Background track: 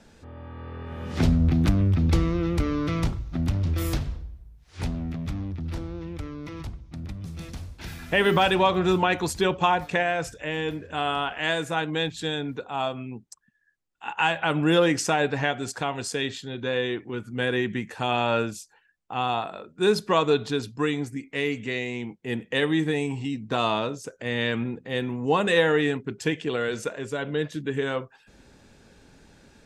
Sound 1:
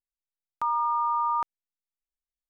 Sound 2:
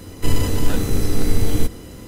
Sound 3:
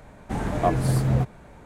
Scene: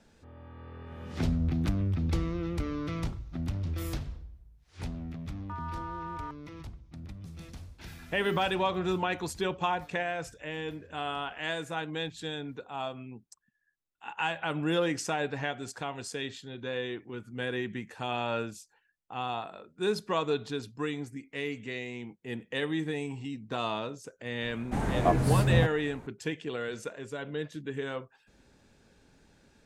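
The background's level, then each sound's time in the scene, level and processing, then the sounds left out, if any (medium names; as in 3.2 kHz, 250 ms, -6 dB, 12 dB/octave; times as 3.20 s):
background track -8 dB
4.88 s: add 1 -12 dB + local Wiener filter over 41 samples
24.42 s: add 3 -2.5 dB
not used: 2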